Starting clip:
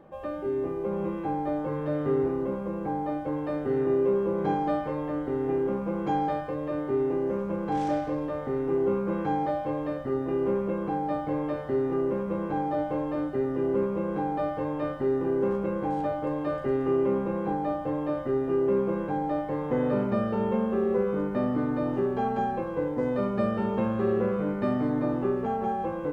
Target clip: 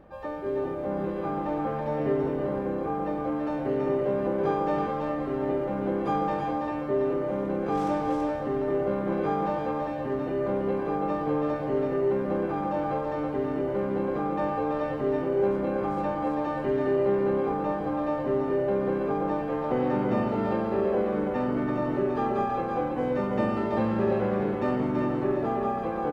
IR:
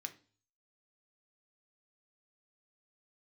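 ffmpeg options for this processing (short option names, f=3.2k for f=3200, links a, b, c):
-filter_complex "[0:a]aeval=exprs='val(0)+0.00112*(sin(2*PI*50*n/s)+sin(2*PI*2*50*n/s)/2+sin(2*PI*3*50*n/s)/3+sin(2*PI*4*50*n/s)/4+sin(2*PI*5*50*n/s)/5)':c=same,asplit=2[a][b];[b]asetrate=66075,aresample=44100,atempo=0.66742,volume=-7dB[c];[a][c]amix=inputs=2:normalize=0,aecho=1:1:330:0.631,volume=-1.5dB"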